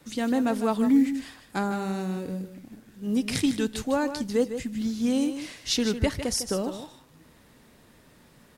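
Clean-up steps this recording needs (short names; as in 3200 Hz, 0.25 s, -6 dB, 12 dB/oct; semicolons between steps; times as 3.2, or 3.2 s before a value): inverse comb 0.153 s -10 dB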